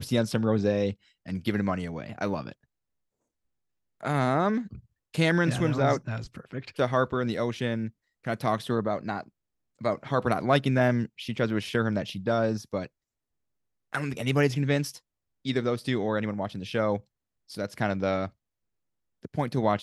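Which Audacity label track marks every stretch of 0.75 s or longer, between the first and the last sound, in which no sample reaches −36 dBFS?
2.520000	4.030000	silence
12.860000	13.930000	silence
18.270000	19.250000	silence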